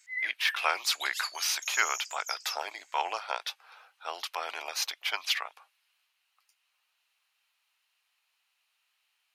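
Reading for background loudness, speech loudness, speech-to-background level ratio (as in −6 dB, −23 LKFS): −36.5 LKFS, −31.5 LKFS, 5.0 dB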